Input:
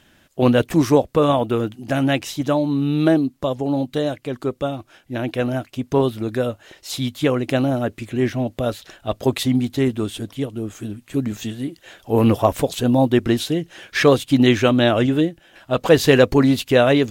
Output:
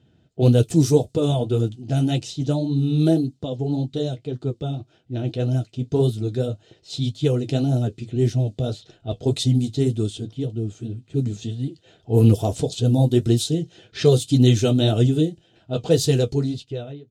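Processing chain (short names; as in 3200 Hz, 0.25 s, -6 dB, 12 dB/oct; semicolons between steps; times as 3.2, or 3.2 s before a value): ending faded out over 1.51 s; graphic EQ 125/250/500/1000/2000/4000/8000 Hz +11/-3/+6/-11/-11/+6/+11 dB; flange 1.8 Hz, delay 8.1 ms, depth 5.6 ms, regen -43%; notch comb 560 Hz; low-pass opened by the level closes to 1900 Hz, open at -14 dBFS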